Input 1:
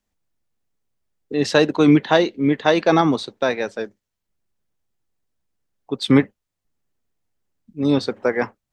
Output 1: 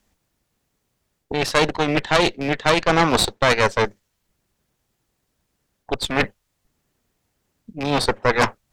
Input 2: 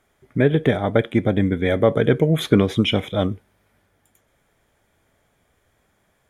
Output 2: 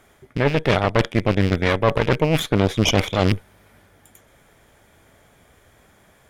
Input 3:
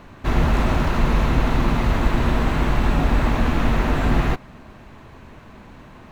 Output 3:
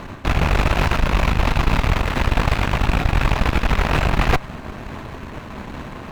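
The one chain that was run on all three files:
rattling part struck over -25 dBFS, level -22 dBFS; reverse; compressor 10:1, threshold -25 dBFS; reverse; dynamic EQ 270 Hz, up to -8 dB, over -44 dBFS, Q 1.2; added harmonics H 6 -10 dB, 8 -28 dB, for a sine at -15.5 dBFS; match loudness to -20 LUFS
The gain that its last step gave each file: +12.0, +10.5, +10.5 dB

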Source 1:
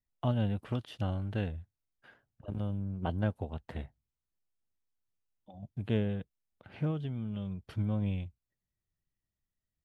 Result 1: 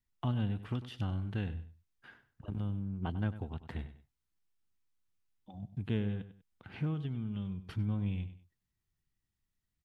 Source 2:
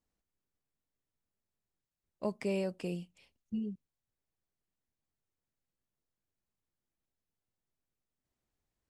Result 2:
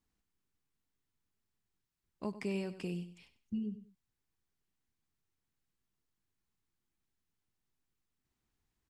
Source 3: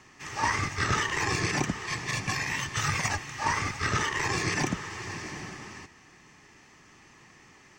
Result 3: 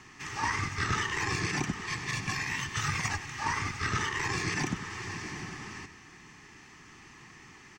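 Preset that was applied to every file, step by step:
high shelf 6800 Hz -4 dB; feedback echo 97 ms, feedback 23%, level -14.5 dB; in parallel at +3 dB: compressor, threshold -43 dBFS; on the sum: bell 580 Hz -10.5 dB 0.57 oct; gain -4 dB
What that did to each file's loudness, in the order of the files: -2.0, -3.0, -3.0 LU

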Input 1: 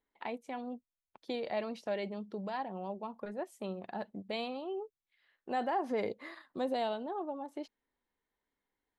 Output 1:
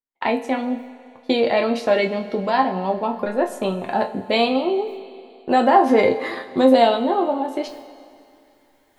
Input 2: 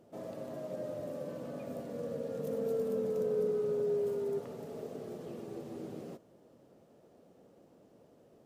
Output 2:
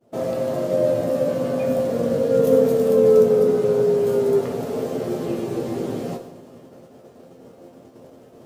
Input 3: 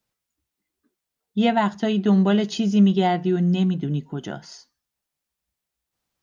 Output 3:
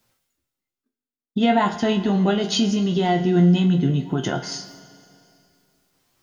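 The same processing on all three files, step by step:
expander -51 dBFS; in parallel at 0 dB: compressor, threshold -29 dBFS; on the sum: limiter -16 dBFS; reverse; upward compressor, threshold -46 dBFS; reverse; resonator bank F2 sus4, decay 0.22 s; Schroeder reverb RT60 2.5 s, combs from 32 ms, DRR 13 dB; match loudness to -20 LUFS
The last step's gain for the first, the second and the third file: +23.0, +22.5, +16.0 dB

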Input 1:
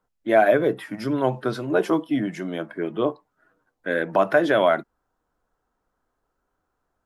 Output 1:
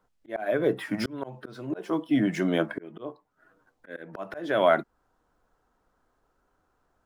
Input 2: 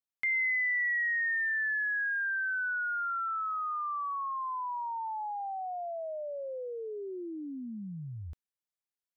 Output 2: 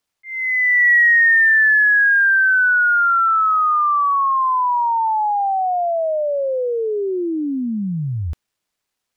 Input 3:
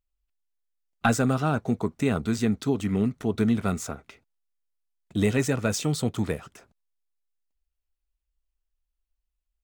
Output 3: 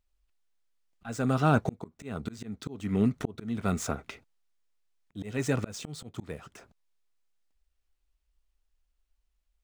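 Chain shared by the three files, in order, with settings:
median filter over 3 samples; auto swell 0.7 s; normalise peaks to -9 dBFS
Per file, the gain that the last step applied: +4.5, +18.0, +5.5 dB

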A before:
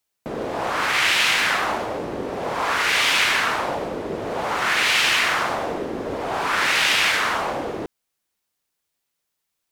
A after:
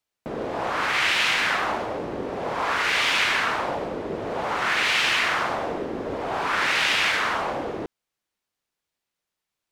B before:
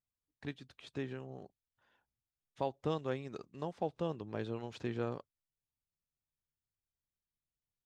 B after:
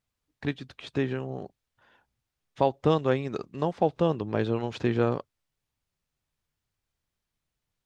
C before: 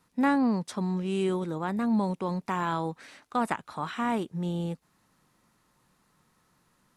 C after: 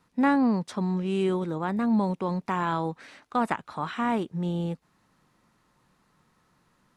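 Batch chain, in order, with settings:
high shelf 7400 Hz -10.5 dB; normalise peaks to -9 dBFS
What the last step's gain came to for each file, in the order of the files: -2.0, +12.5, +2.0 dB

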